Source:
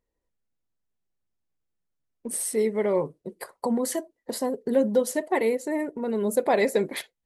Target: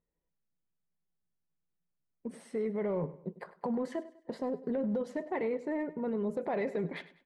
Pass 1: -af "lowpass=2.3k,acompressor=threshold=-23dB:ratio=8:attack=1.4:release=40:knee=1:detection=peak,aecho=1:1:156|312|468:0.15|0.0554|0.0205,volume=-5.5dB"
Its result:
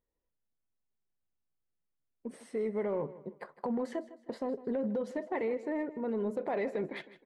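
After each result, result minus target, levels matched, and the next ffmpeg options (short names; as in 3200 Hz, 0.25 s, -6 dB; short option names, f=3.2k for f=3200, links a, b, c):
echo 56 ms late; 125 Hz band -4.5 dB
-af "lowpass=2.3k,acompressor=threshold=-23dB:ratio=8:attack=1.4:release=40:knee=1:detection=peak,aecho=1:1:100|200|300:0.15|0.0554|0.0205,volume=-5.5dB"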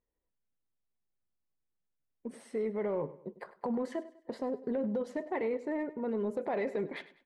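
125 Hz band -4.5 dB
-af "lowpass=2.3k,equalizer=f=170:w=5:g=12.5,acompressor=threshold=-23dB:ratio=8:attack=1.4:release=40:knee=1:detection=peak,aecho=1:1:100|200|300:0.15|0.0554|0.0205,volume=-5.5dB"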